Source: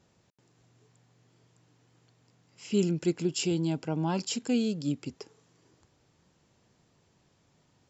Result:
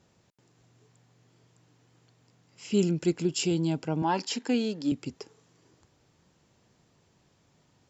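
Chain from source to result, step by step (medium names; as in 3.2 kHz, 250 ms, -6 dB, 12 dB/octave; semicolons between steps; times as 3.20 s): Chebyshev shaper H 2 -34 dB, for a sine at -15 dBFS; 4.02–4.92 s: cabinet simulation 260–6700 Hz, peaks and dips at 280 Hz +5 dB, 900 Hz +8 dB, 1.8 kHz +9 dB; trim +1.5 dB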